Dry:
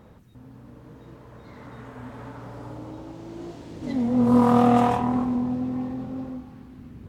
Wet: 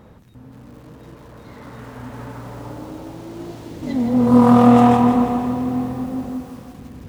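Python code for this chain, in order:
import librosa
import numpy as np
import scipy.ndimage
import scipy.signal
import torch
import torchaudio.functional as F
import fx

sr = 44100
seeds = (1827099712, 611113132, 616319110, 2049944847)

y = fx.echo_diffused(x, sr, ms=491, feedback_pct=41, wet_db=-15.5)
y = fx.echo_crushed(y, sr, ms=167, feedback_pct=55, bits=8, wet_db=-7.5)
y = F.gain(torch.from_numpy(y), 4.5).numpy()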